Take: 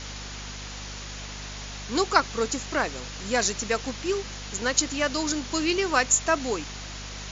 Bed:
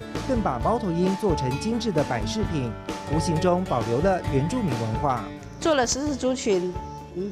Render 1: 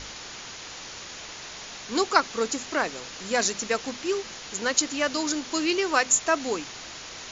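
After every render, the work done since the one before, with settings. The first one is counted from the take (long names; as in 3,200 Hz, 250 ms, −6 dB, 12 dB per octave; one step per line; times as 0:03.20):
mains-hum notches 50/100/150/200/250 Hz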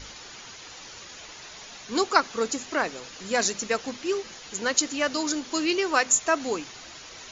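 broadband denoise 7 dB, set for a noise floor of −41 dBFS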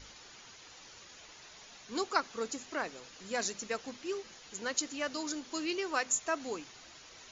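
level −10 dB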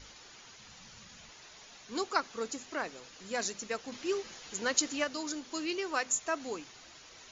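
0:00.59–0:01.30: low shelf with overshoot 260 Hz +6.5 dB, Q 3
0:03.92–0:05.04: clip gain +4.5 dB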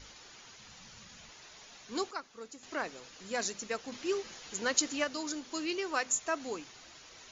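0:02.11–0:02.63: clip gain −10 dB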